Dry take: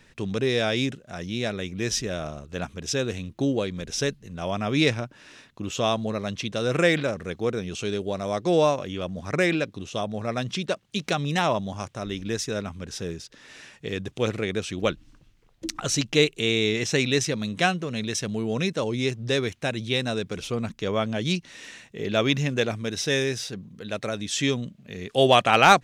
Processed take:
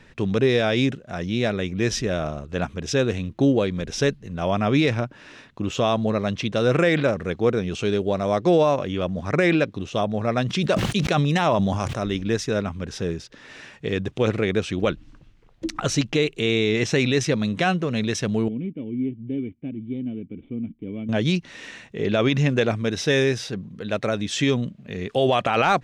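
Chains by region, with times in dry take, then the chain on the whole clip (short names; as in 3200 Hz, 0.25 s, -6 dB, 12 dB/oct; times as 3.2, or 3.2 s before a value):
10.47–12.17 high shelf 7000 Hz +6.5 dB + sustainer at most 36 dB/s
18.48–21.09 median filter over 15 samples + vocal tract filter i
whole clip: high shelf 11000 Hz -5 dB; limiter -14.5 dBFS; high shelf 4200 Hz -10 dB; gain +6 dB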